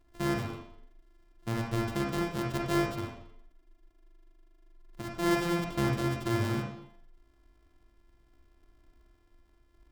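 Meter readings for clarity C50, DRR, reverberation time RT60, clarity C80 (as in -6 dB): 2.0 dB, -0.5 dB, 0.65 s, 6.0 dB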